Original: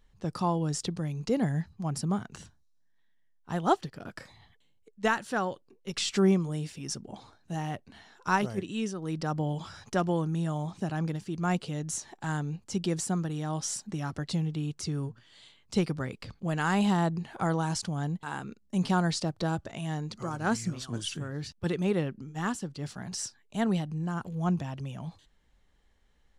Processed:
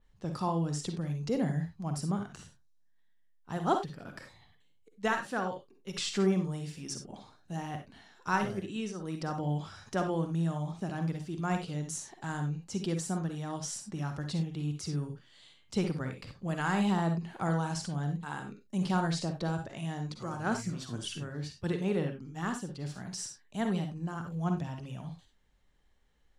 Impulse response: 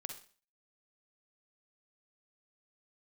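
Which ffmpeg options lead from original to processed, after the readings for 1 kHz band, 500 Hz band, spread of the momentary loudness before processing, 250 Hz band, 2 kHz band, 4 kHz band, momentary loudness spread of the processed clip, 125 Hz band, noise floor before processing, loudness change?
−3.0 dB, −3.0 dB, 10 LU, −3.0 dB, −3.0 dB, −3.5 dB, 11 LU, −2.0 dB, −65 dBFS, −3.0 dB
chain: -filter_complex "[1:a]atrim=start_sample=2205,afade=type=out:start_time=0.15:duration=0.01,atrim=end_sample=7056[link_01];[0:a][link_01]afir=irnorm=-1:irlink=0,adynamicequalizer=threshold=0.00316:dfrequency=3800:dqfactor=0.7:tfrequency=3800:tqfactor=0.7:attack=5:release=100:ratio=0.375:range=2:mode=cutabove:tftype=highshelf"

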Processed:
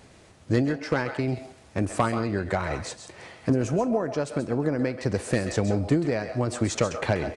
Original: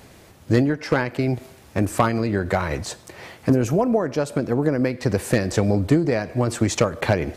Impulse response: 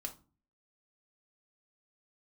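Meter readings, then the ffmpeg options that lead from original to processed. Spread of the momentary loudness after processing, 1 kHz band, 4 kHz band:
8 LU, −4.5 dB, −4.5 dB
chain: -filter_complex "[0:a]aresample=22050,aresample=44100,asplit=2[link_01][link_02];[link_02]highpass=550[link_03];[1:a]atrim=start_sample=2205,adelay=132[link_04];[link_03][link_04]afir=irnorm=-1:irlink=0,volume=-5.5dB[link_05];[link_01][link_05]amix=inputs=2:normalize=0,volume=-5dB"

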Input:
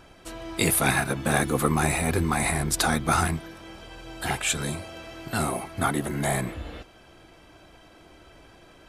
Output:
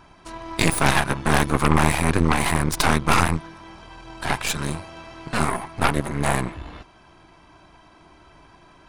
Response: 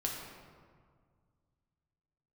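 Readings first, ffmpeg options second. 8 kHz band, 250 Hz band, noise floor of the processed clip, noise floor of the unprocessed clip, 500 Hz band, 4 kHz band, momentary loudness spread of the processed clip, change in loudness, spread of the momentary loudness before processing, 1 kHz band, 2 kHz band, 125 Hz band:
−1.0 dB, +4.0 dB, −52 dBFS, −53 dBFS, +2.5 dB, +4.0 dB, 20 LU, +3.5 dB, 19 LU, +5.0 dB, +4.0 dB, +4.5 dB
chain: -af "aresample=22050,aresample=44100,equalizer=frequency=160:width_type=o:width=0.33:gain=4,equalizer=frequency=500:width_type=o:width=0.33:gain=-8,equalizer=frequency=1000:width_type=o:width=0.33:gain=10,equalizer=frequency=3150:width_type=o:width=0.33:gain=-3,equalizer=frequency=8000:width_type=o:width=0.33:gain=-7,aeval=exprs='0.501*(cos(1*acos(clip(val(0)/0.501,-1,1)))-cos(1*PI/2))+0.158*(cos(6*acos(clip(val(0)/0.501,-1,1)))-cos(6*PI/2))':channel_layout=same"

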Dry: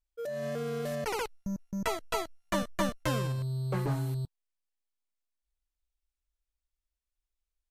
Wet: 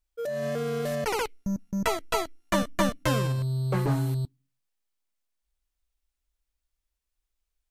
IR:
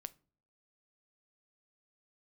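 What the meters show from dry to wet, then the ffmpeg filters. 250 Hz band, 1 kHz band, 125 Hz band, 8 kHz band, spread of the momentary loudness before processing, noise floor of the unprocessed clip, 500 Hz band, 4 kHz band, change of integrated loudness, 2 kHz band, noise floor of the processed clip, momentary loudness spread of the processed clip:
+5.5 dB, +5.0 dB, +5.0 dB, +5.0 dB, 6 LU, below −85 dBFS, +5.0 dB, +5.0 dB, +5.0 dB, +5.0 dB, −84 dBFS, 6 LU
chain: -filter_complex "[0:a]aeval=exprs='0.178*(cos(1*acos(clip(val(0)/0.178,-1,1)))-cos(1*PI/2))+0.0251*(cos(2*acos(clip(val(0)/0.178,-1,1)))-cos(2*PI/2))+0.00794*(cos(4*acos(clip(val(0)/0.178,-1,1)))-cos(4*PI/2))':channel_layout=same,asplit=2[link_01][link_02];[link_02]asplit=3[link_03][link_04][link_05];[link_03]bandpass=frequency=270:width_type=q:width=8,volume=0dB[link_06];[link_04]bandpass=frequency=2290:width_type=q:width=8,volume=-6dB[link_07];[link_05]bandpass=frequency=3010:width_type=q:width=8,volume=-9dB[link_08];[link_06][link_07][link_08]amix=inputs=3:normalize=0[link_09];[1:a]atrim=start_sample=2205,adelay=11[link_10];[link_09][link_10]afir=irnorm=-1:irlink=0,volume=-2dB[link_11];[link_01][link_11]amix=inputs=2:normalize=0,volume=5dB"

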